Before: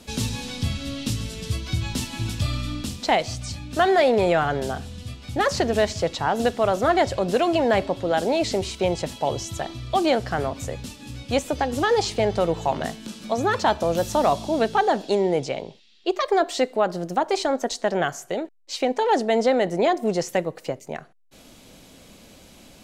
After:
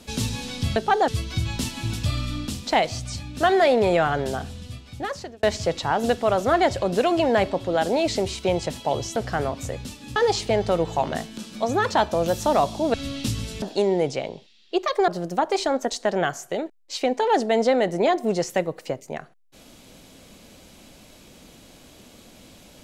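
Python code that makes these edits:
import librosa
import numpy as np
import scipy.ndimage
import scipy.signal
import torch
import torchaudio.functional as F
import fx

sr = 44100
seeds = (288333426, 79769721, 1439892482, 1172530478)

y = fx.edit(x, sr, fx.swap(start_s=0.76, length_s=0.68, other_s=14.63, other_length_s=0.32),
    fx.fade_out_span(start_s=4.89, length_s=0.9),
    fx.cut(start_s=9.52, length_s=0.63),
    fx.cut(start_s=11.15, length_s=0.7),
    fx.cut(start_s=16.41, length_s=0.46), tone=tone)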